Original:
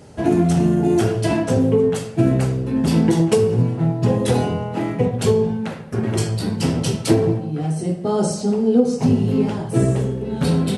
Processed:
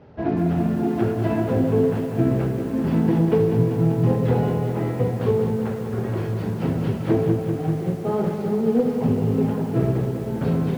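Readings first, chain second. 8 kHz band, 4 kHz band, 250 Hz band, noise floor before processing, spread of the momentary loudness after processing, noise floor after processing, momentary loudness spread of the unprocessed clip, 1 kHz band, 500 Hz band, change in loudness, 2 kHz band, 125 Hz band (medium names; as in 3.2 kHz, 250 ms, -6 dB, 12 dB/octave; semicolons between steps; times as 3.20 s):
under -15 dB, under -10 dB, -3.0 dB, -31 dBFS, 6 LU, -28 dBFS, 6 LU, -3.0 dB, -3.0 dB, -3.0 dB, -5.0 dB, -2.5 dB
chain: CVSD coder 32 kbps; low-pass 1.9 kHz 12 dB/octave; hum notches 50/100/150/200/250/300/350 Hz; bit-crushed delay 195 ms, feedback 80%, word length 7-bit, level -8 dB; trim -3.5 dB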